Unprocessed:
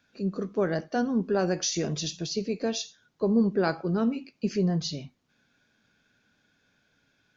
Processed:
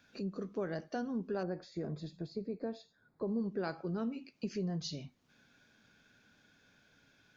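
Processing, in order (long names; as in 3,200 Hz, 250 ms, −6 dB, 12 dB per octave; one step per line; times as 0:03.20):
downward compressor 2 to 1, threshold −47 dBFS, peak gain reduction 15.5 dB
0:01.43–0:03.28: moving average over 15 samples
level +2 dB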